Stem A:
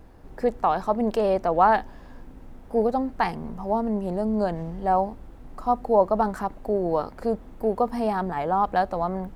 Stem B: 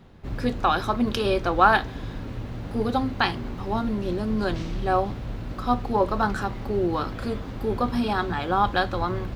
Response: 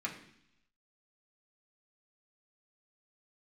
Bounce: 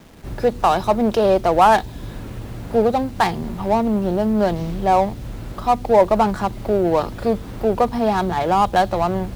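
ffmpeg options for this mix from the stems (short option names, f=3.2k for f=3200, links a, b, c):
-filter_complex "[0:a]highpass=f=150:w=0.5412,highpass=f=150:w=1.3066,adynamicsmooth=sensitivity=5:basefreq=500,volume=0dB[a];[1:a]acrossover=split=330|3000[b][c][d];[c]acompressor=threshold=-37dB:ratio=6[e];[b][e][d]amix=inputs=3:normalize=0,acompressor=threshold=-28dB:ratio=4,volume=-1,volume=-4dB[f];[a][f]amix=inputs=2:normalize=0,acontrast=70,acrusher=bits=7:mix=0:aa=0.000001"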